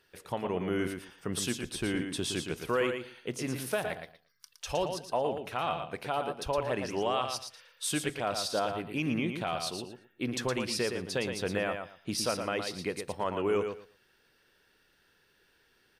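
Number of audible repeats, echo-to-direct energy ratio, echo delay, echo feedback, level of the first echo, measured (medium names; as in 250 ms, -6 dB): 2, -6.5 dB, 115 ms, 18%, -6.5 dB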